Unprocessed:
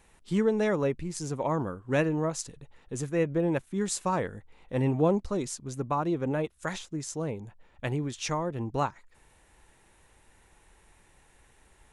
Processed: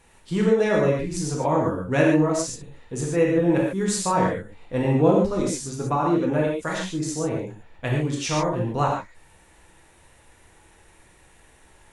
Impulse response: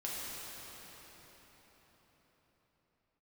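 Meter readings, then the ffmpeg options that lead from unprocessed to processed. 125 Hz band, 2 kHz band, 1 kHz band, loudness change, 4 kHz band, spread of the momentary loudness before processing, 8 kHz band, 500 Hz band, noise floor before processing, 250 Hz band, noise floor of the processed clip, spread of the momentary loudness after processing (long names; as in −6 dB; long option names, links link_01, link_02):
+6.5 dB, +7.5 dB, +7.0 dB, +7.0 dB, +7.0 dB, 11 LU, +6.5 dB, +7.5 dB, −62 dBFS, +7.5 dB, −55 dBFS, 12 LU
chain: -filter_complex "[1:a]atrim=start_sample=2205,afade=type=out:start_time=0.18:duration=0.01,atrim=end_sample=8379,asetrate=38367,aresample=44100[link_01];[0:a][link_01]afir=irnorm=-1:irlink=0,volume=6.5dB"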